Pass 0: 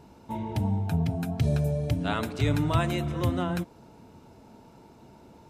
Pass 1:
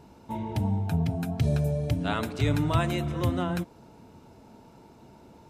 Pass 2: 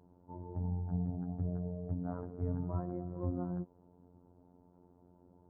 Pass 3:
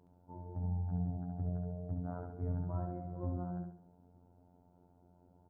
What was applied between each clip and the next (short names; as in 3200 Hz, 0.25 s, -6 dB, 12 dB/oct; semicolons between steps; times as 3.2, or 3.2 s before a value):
nothing audible
crackle 120/s -41 dBFS; robotiser 88.7 Hz; Gaussian blur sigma 9.2 samples; gain -7.5 dB
feedback echo 69 ms, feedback 38%, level -5 dB; gain -2.5 dB